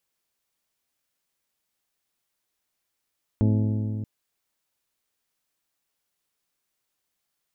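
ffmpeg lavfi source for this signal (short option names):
-f lavfi -i "aevalsrc='0.126*pow(10,-3*t/3.28)*sin(2*PI*107*t)+0.0794*pow(10,-3*t/2.664)*sin(2*PI*214*t)+0.0501*pow(10,-3*t/2.522)*sin(2*PI*256.8*t)+0.0316*pow(10,-3*t/2.359)*sin(2*PI*321*t)+0.02*pow(10,-3*t/2.164)*sin(2*PI*428*t)+0.0126*pow(10,-3*t/2.024)*sin(2*PI*535*t)+0.00794*pow(10,-3*t/1.916)*sin(2*PI*642*t)+0.00501*pow(10,-3*t/1.758)*sin(2*PI*856*t)':d=0.63:s=44100"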